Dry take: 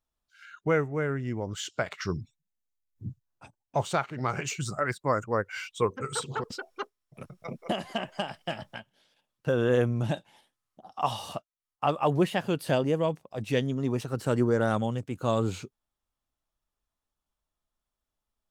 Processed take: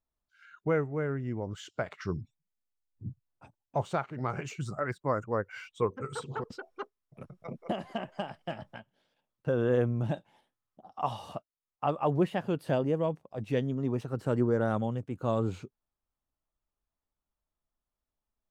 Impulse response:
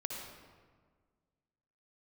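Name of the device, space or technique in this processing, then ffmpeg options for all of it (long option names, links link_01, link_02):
through cloth: -af "highshelf=frequency=2300:gain=-12,volume=-2dB"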